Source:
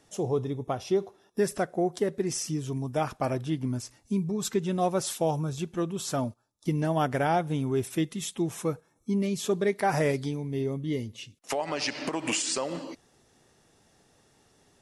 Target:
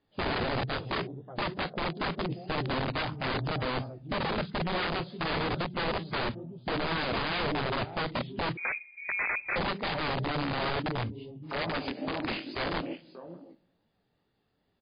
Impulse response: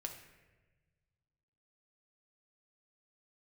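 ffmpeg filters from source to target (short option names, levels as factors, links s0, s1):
-filter_complex "[0:a]afwtdn=0.0282,lowshelf=f=260:g=4,alimiter=level_in=1.12:limit=0.0631:level=0:latency=1:release=18,volume=0.891,aecho=1:1:585:0.2,flanger=delay=17:depth=7.8:speed=2.3,asplit=2[s0][s1];[1:a]atrim=start_sample=2205,asetrate=57330,aresample=44100[s2];[s1][s2]afir=irnorm=-1:irlink=0,volume=0.501[s3];[s0][s3]amix=inputs=2:normalize=0,aeval=exprs='(mod(28.2*val(0)+1,2)-1)/28.2':c=same,asettb=1/sr,asplit=3[s4][s5][s6];[s4]atrim=end=8.574[s7];[s5]atrim=start=8.57:end=9.56,asetpts=PTS-STARTPTS,afade=t=in:d=0.004:c=qsin,afade=t=out:st=0.986:d=0.004:c=qsin,lowpass=f=2200:t=q:w=0.5098,lowpass=f=2200:t=q:w=0.6013,lowpass=f=2200:t=q:w=0.9,lowpass=f=2200:t=q:w=2.563,afreqshift=-2600[s8];[s6]atrim=start=9.556[s9];[s7][s8]acrossfade=d=0.004:c1=hsin:c2=qsin[s10];[s10][s9]acrossfade=d=0.004:c1=qsin:c2=hsin,volume=1.58" -ar 11025 -c:a libmp3lame -b:a 24k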